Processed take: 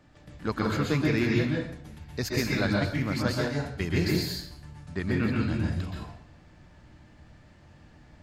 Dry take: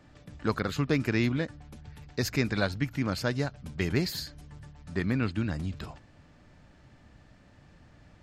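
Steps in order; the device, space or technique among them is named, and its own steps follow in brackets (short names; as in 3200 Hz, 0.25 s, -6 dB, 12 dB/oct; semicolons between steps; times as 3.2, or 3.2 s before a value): bathroom (reverb RT60 0.65 s, pre-delay 0.117 s, DRR -2.5 dB); gain -2 dB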